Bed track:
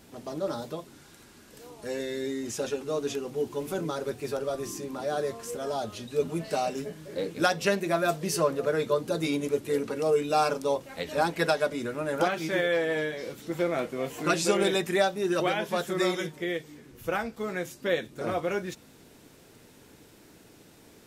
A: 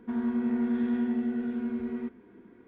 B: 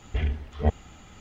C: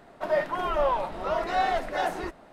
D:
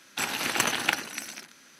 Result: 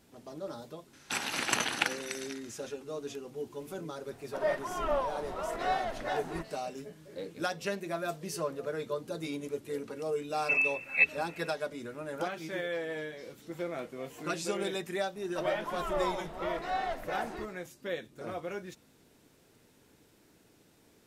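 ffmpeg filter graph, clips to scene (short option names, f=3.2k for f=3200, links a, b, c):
-filter_complex "[3:a]asplit=2[a][b];[0:a]volume=-9dB[c];[4:a]lowpass=f=11k:w=0.5412,lowpass=f=11k:w=1.3066[d];[a]tremolo=f=2.6:d=0.43[e];[2:a]lowpass=f=2.3k:t=q:w=0.5098,lowpass=f=2.3k:t=q:w=0.6013,lowpass=f=2.3k:t=q:w=0.9,lowpass=f=2.3k:t=q:w=2.563,afreqshift=-2700[f];[d]atrim=end=1.79,asetpts=PTS-STARTPTS,volume=-4dB,afade=t=in:d=0.004:c=hsin,afade=t=out:st=1.786:d=0.004:c=hsin,adelay=930[g];[e]atrim=end=2.52,asetpts=PTS-STARTPTS,volume=-4.5dB,afade=t=in:d=0.004:c=hsin,afade=t=out:st=2.516:d=0.004:c=hsin,adelay=4120[h];[f]atrim=end=1.2,asetpts=PTS-STARTPTS,volume=-2.5dB,afade=t=in:d=0.004:c=hsin,afade=t=out:st=1.196:d=0.004:c=hsin,adelay=455994S[i];[b]atrim=end=2.52,asetpts=PTS-STARTPTS,volume=-8dB,afade=t=in:d=0.004:c=hsin,afade=t=out:st=2.516:d=0.004:c=hsin,adelay=15150[j];[c][g][h][i][j]amix=inputs=5:normalize=0"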